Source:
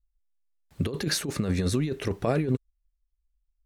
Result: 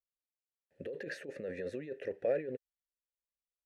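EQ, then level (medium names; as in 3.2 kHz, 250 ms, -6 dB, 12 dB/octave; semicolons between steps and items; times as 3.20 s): vowel filter e; peaking EQ 3.2 kHz -9.5 dB 1.7 oct; dynamic bell 1.9 kHz, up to +6 dB, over -58 dBFS, Q 0.93; +2.5 dB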